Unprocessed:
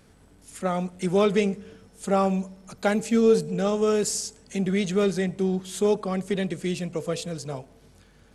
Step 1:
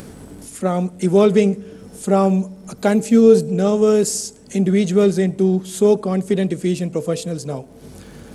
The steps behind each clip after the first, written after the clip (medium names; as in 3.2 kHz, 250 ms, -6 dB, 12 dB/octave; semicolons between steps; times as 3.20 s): treble shelf 7.4 kHz +10.5 dB; upward compressor, threshold -32 dBFS; peaking EQ 270 Hz +9.5 dB 2.9 oct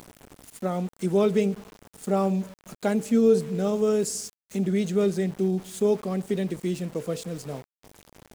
small samples zeroed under -32.5 dBFS; trim -8.5 dB